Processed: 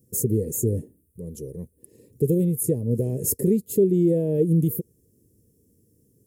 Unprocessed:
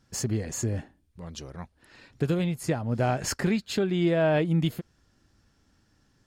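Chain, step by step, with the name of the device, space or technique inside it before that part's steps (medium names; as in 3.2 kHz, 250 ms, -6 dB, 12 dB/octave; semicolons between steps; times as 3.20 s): PA system with an anti-feedback notch (high-pass 100 Hz 12 dB/octave; Butterworth band-stop 1.4 kHz, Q 2.2; peak limiter -18 dBFS, peak gain reduction 5 dB); FFT filter 120 Hz 0 dB, 300 Hz -3 dB, 460 Hz +6 dB, 740 Hz -29 dB, 2.2 kHz -29 dB, 4.3 kHz -26 dB, 11 kHz +13 dB; trim +7 dB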